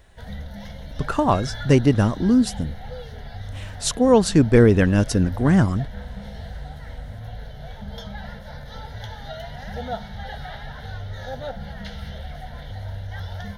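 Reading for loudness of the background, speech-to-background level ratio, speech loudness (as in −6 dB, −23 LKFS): −36.0 LKFS, 17.0 dB, −19.0 LKFS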